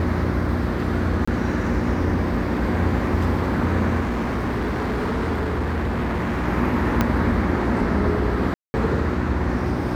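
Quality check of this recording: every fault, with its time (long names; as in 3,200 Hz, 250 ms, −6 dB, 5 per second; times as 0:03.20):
mains hum 60 Hz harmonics 6 −26 dBFS
0:01.25–0:01.27: drop-out 25 ms
0:04.00–0:06.48: clipping −20 dBFS
0:07.01: click −5 dBFS
0:08.54–0:08.74: drop-out 200 ms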